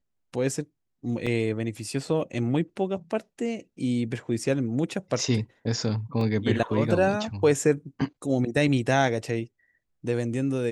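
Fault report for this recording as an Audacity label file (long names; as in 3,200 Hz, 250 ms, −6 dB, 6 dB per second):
1.260000	1.270000	drop-out 5.4 ms
6.210000	6.210000	drop-out 2.2 ms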